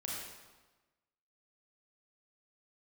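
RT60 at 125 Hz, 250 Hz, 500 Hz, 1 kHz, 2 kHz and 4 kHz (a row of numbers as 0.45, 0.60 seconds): 1.2, 1.3, 1.2, 1.2, 1.1, 1.0 seconds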